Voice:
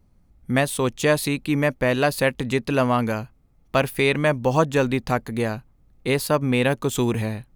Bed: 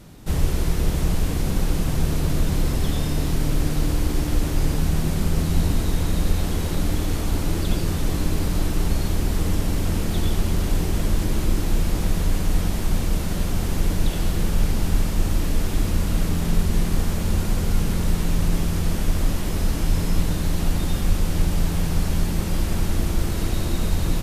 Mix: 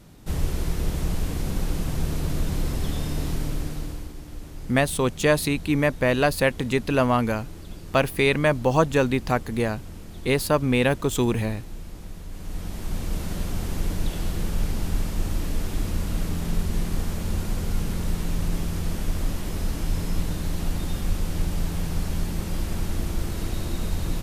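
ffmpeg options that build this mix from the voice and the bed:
-filter_complex "[0:a]adelay=4200,volume=-0.5dB[a];[1:a]volume=7.5dB,afade=t=out:st=3.3:d=0.84:silence=0.237137,afade=t=in:st=12.29:d=0.95:silence=0.251189[b];[a][b]amix=inputs=2:normalize=0"

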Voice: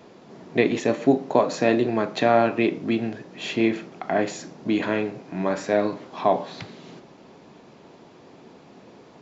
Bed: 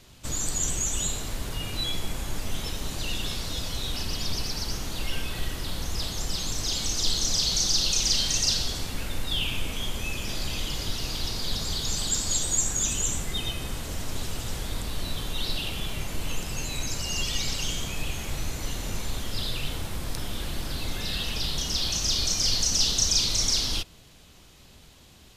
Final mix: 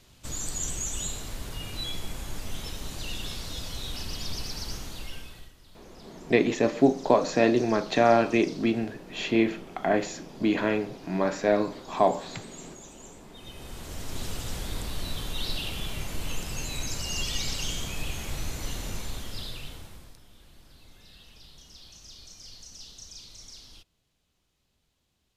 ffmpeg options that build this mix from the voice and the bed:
-filter_complex "[0:a]adelay=5750,volume=-1.5dB[a];[1:a]volume=16.5dB,afade=t=out:st=4.73:d=0.8:silence=0.11885,afade=t=in:st=13.33:d=0.96:silence=0.0891251,afade=t=out:st=18.76:d=1.43:silence=0.0944061[b];[a][b]amix=inputs=2:normalize=0"

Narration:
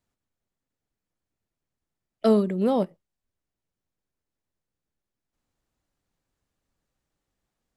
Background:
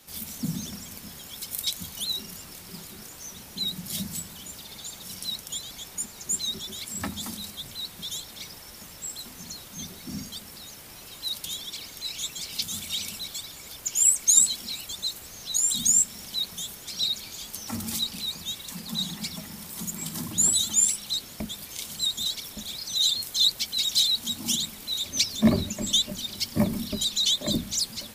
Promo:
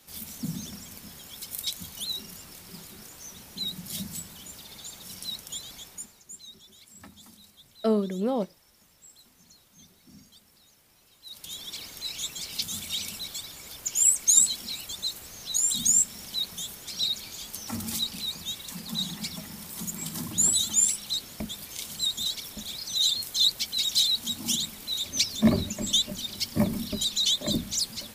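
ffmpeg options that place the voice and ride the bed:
-filter_complex "[0:a]adelay=5600,volume=-4.5dB[a];[1:a]volume=12.5dB,afade=t=out:st=5.74:d=0.5:silence=0.211349,afade=t=in:st=11.24:d=0.51:silence=0.16788[b];[a][b]amix=inputs=2:normalize=0"

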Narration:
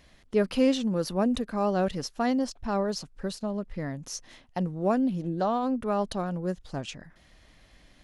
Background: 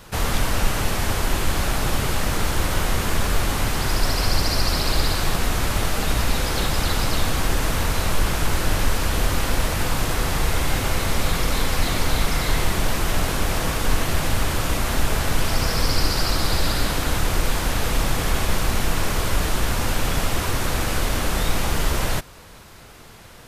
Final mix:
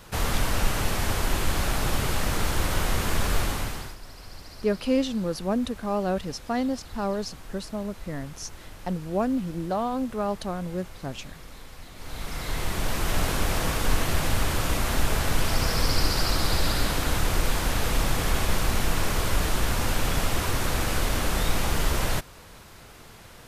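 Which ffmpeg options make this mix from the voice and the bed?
-filter_complex "[0:a]adelay=4300,volume=-0.5dB[a];[1:a]volume=16.5dB,afade=t=out:st=3.39:d=0.57:silence=0.105925,afade=t=in:st=11.95:d=1.28:silence=0.1[b];[a][b]amix=inputs=2:normalize=0"

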